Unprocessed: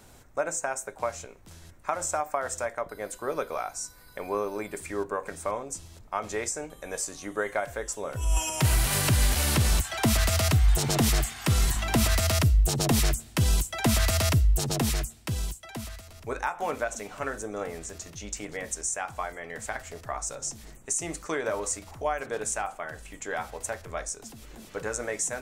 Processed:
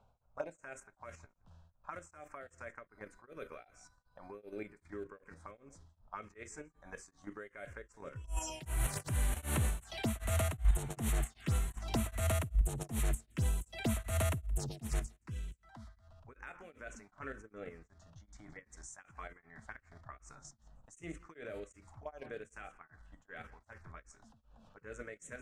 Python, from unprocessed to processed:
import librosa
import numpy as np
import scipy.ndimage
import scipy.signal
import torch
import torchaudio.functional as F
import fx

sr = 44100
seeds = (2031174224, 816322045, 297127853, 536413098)

p1 = fx.env_lowpass(x, sr, base_hz=2000.0, full_db=-21.5)
p2 = fx.hpss(p1, sr, part='percussive', gain_db=-4)
p3 = fx.level_steps(p2, sr, step_db=9)
p4 = fx.env_phaser(p3, sr, low_hz=310.0, high_hz=5000.0, full_db=-25.0)
p5 = p4 + fx.echo_single(p4, sr, ms=171, db=-23.0, dry=0)
p6 = p5 * np.abs(np.cos(np.pi * 2.6 * np.arange(len(p5)) / sr))
y = F.gain(torch.from_numpy(p6), -2.5).numpy()